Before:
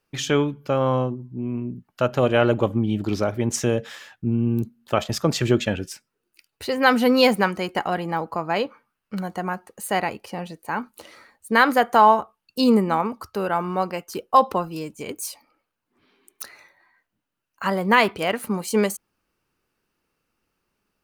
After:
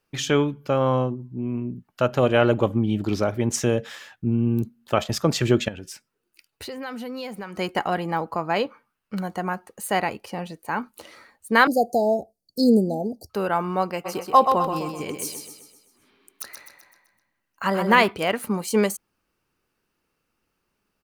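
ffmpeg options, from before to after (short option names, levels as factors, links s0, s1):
-filter_complex "[0:a]asettb=1/sr,asplit=3[s0][s1][s2];[s0]atrim=end=5.684[s3];[s1]atrim=start=5.68:end=7.58,asetpts=PTS-STARTPTS,afade=t=in:d=0.004:c=qsin,afade=t=out:st=1.896:d=0.004:c=qsin,acompressor=threshold=0.0224:ratio=4:attack=3.2:release=140:knee=1:detection=peak[s4];[s2]atrim=start=7.576[s5];[s3][s4]acrossfade=d=0.004:c1=hsin:c2=qsin[s6];[s6][s5]acrossfade=d=0.004:c1=qsin:c2=hsin,asettb=1/sr,asplit=3[s7][s8][s9];[s7]atrim=end=11.674[s10];[s8]atrim=start=11.67:end=13.3,asetpts=PTS-STARTPTS,afade=t=in:d=0.004:c=qsin,afade=t=out:st=1.626:d=0.004:c=qsin,asuperstop=centerf=1800:order=20:qfactor=0.51[s11];[s9]atrim=start=13.296[s12];[s10][s11]acrossfade=d=0.004:c1=hsin:c2=qsin[s13];[s13][s12]acrossfade=d=0.004:c1=qsin:c2=hsin,asplit=3[s14][s15][s16];[s14]afade=t=out:st=14.04:d=0.02[s17];[s15]aecho=1:1:128|256|384|512|640|768:0.501|0.246|0.12|0.059|0.0289|0.0142,afade=t=in:st=14.04:d=0.02,afade=t=out:st=18.02:d=0.02[s18];[s16]afade=t=in:st=18.02:d=0.02[s19];[s17][s18][s19]amix=inputs=3:normalize=0"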